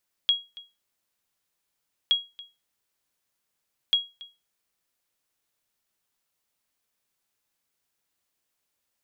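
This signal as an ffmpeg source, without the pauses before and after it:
-f lavfi -i "aevalsrc='0.211*(sin(2*PI*3300*mod(t,1.82))*exp(-6.91*mod(t,1.82)/0.25)+0.0891*sin(2*PI*3300*max(mod(t,1.82)-0.28,0))*exp(-6.91*max(mod(t,1.82)-0.28,0)/0.25))':d=5.46:s=44100"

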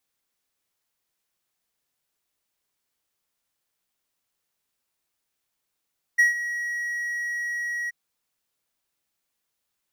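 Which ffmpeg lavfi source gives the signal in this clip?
-f lavfi -i "aevalsrc='0.282*(1-4*abs(mod(1910*t+0.25,1)-0.5))':d=1.73:s=44100,afade=t=in:d=0.016,afade=t=out:st=0.016:d=0.138:silence=0.211,afade=t=out:st=1.71:d=0.02"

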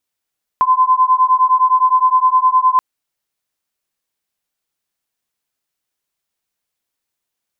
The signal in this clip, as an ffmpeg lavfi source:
-f lavfi -i "aevalsrc='0.237*(sin(2*PI*1020*t)+sin(2*PI*1029.7*t))':d=2.18:s=44100"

